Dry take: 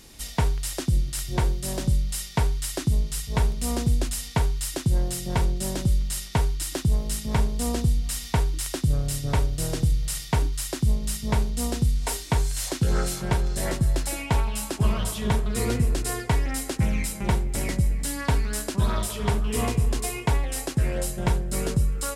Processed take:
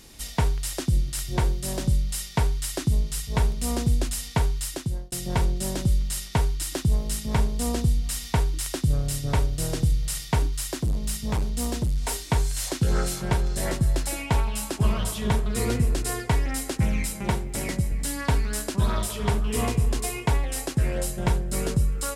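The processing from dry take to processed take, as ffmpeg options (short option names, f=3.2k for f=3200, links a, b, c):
-filter_complex "[0:a]asettb=1/sr,asplit=3[a][b][c];[a]atrim=end=10.464[d];[b]atrim=start=10.46:end=12.13,asetpts=PTS-STARTPTS,afade=t=in:d=0.004:c=qsin,afade=t=out:st=1.666:d=0.004:c=qsin,asoftclip=type=hard:threshold=-21dB[e];[c]atrim=start=12.126[f];[d][e]acrossfade=d=0.004:c1=hsin:c2=qsin[g];[g][f]acrossfade=d=0.004:c1=qsin:c2=hsin,asettb=1/sr,asplit=3[h][i][j];[h]atrim=end=17.204[k];[i]atrim=start=17.2:end=17.92,asetpts=PTS-STARTPTS,afade=t=in:d=0.004:c=qsin,afade=t=out:st=0.716:d=0.004:c=qsin,highpass=f=83:p=1[l];[j]atrim=start=17.916[m];[k][l]acrossfade=d=0.004:c1=hsin:c2=qsin[n];[n][m]acrossfade=d=0.004:c1=qsin:c2=hsin,asplit=2[o][p];[o]atrim=end=5.12,asetpts=PTS-STARTPTS,afade=t=out:st=4.45:d=0.67:c=qsin[q];[p]atrim=start=5.12,asetpts=PTS-STARTPTS,afade=t=in:d=0.004:c=hsin[r];[q][r]concat=n=2:v=0:a=1"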